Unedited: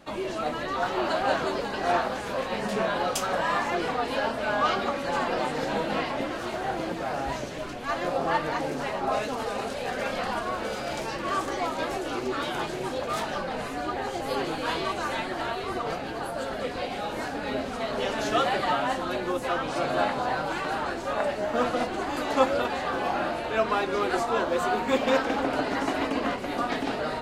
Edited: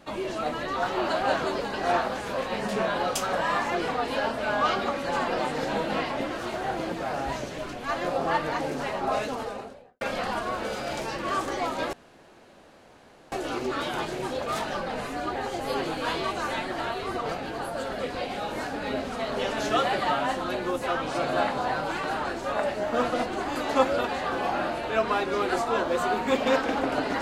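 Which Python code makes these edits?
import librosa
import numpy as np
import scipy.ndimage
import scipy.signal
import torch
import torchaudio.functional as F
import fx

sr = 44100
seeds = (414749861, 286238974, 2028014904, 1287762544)

y = fx.studio_fade_out(x, sr, start_s=9.21, length_s=0.8)
y = fx.edit(y, sr, fx.insert_room_tone(at_s=11.93, length_s=1.39), tone=tone)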